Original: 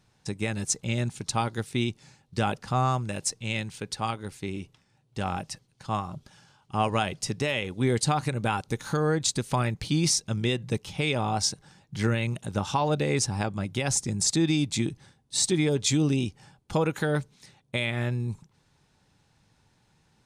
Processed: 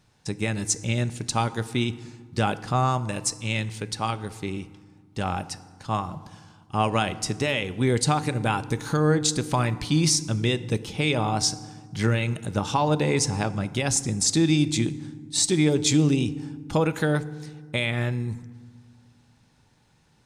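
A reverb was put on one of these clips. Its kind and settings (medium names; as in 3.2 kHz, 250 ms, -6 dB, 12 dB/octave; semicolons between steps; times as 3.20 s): FDN reverb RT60 1.6 s, low-frequency decay 1.55×, high-frequency decay 0.55×, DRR 14 dB; trim +2.5 dB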